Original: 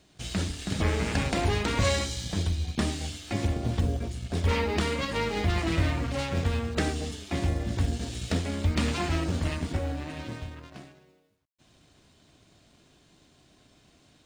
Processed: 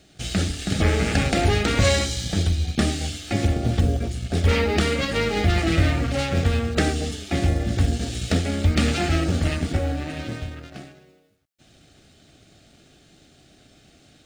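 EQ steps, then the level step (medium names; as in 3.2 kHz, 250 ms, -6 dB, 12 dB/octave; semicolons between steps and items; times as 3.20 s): Butterworth band-stop 1 kHz, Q 4.1; +6.5 dB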